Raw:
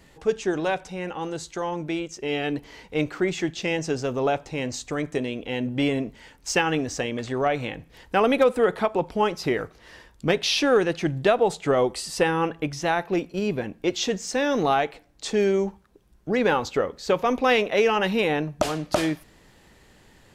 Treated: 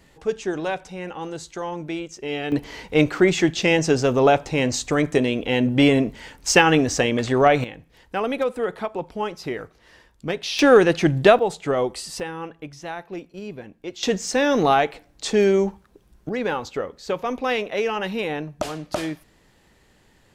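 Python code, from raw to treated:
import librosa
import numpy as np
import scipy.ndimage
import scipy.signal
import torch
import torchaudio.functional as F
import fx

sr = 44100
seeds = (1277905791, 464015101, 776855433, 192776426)

y = fx.gain(x, sr, db=fx.steps((0.0, -1.0), (2.52, 7.5), (7.64, -4.5), (10.59, 6.5), (11.39, -1.0), (12.2, -9.0), (14.03, 4.0), (16.29, -3.5)))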